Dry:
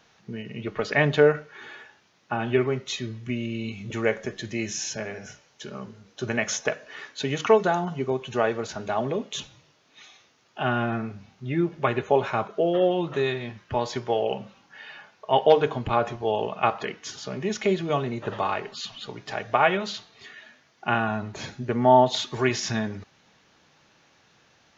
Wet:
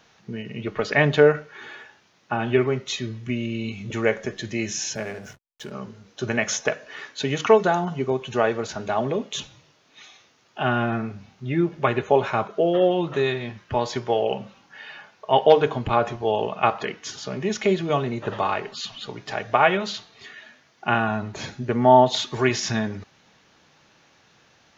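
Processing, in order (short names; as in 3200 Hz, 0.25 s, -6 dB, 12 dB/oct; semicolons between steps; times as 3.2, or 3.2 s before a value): 4.95–5.72 backlash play -42 dBFS; gain +2.5 dB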